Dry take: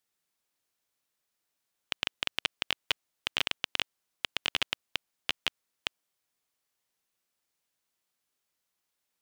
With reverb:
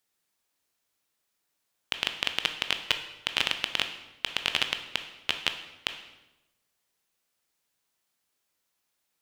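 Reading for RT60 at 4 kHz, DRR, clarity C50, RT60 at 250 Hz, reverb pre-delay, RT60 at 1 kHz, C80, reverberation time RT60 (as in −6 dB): 0.85 s, 6.5 dB, 9.5 dB, 1.2 s, 15 ms, 0.95 s, 12.0 dB, 1.0 s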